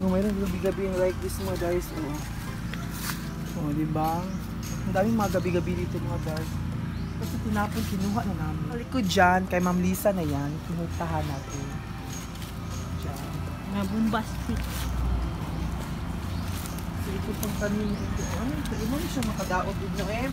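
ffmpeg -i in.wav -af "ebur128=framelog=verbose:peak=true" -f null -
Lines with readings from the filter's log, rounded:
Integrated loudness:
  I:         -29.0 LUFS
  Threshold: -39.0 LUFS
Loudness range:
  LRA:         5.6 LU
  Threshold: -49.1 LUFS
  LRA low:   -31.6 LUFS
  LRA high:  -26.1 LUFS
True peak:
  Peak:       -9.4 dBFS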